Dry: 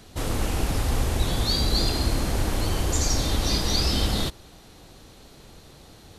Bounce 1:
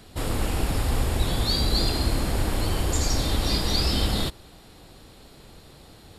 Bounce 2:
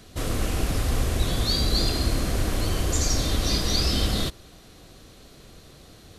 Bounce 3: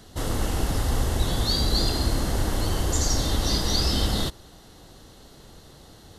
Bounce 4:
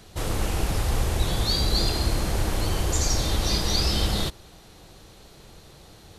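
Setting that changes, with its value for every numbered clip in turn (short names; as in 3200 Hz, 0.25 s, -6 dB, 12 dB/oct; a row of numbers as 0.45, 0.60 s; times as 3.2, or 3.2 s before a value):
notch, frequency: 6100, 870, 2400, 260 Hz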